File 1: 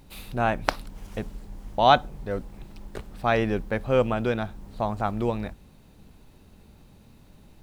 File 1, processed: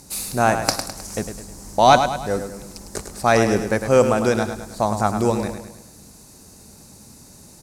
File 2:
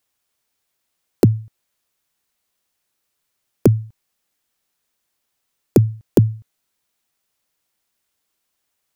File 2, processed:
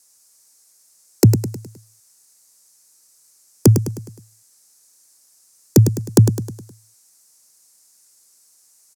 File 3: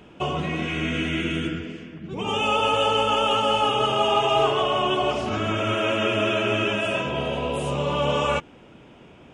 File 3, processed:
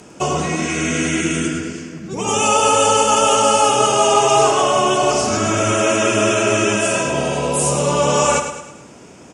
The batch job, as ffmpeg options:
ffmpeg -i in.wav -filter_complex "[0:a]acrossover=split=1700[link_01][link_02];[link_01]highpass=frequency=120:poles=1[link_03];[link_02]aexciter=amount=9.2:drive=5.2:freq=4600[link_04];[link_03][link_04]amix=inputs=2:normalize=0,lowpass=8000,equalizer=frequency=3500:width=1.5:gain=-5,apsyclip=11dB,asplit=2[link_05][link_06];[link_06]aecho=0:1:104|208|312|416|520:0.376|0.177|0.083|0.039|0.0183[link_07];[link_05][link_07]amix=inputs=2:normalize=0,volume=-4dB" out.wav

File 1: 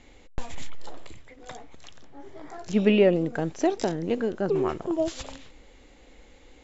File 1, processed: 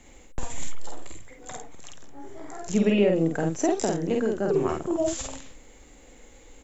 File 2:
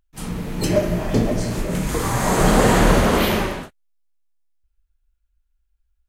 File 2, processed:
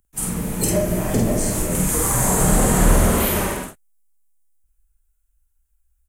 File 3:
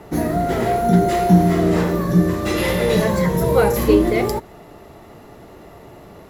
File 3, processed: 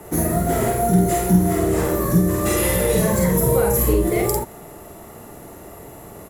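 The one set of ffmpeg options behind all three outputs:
ffmpeg -i in.wav -filter_complex "[0:a]highshelf=frequency=6300:width_type=q:width=1.5:gain=11.5,acrossover=split=160[link_01][link_02];[link_02]acompressor=threshold=-19dB:ratio=5[link_03];[link_01][link_03]amix=inputs=2:normalize=0,asplit=2[link_04][link_05];[link_05]adelay=49,volume=-2.5dB[link_06];[link_04][link_06]amix=inputs=2:normalize=0" out.wav

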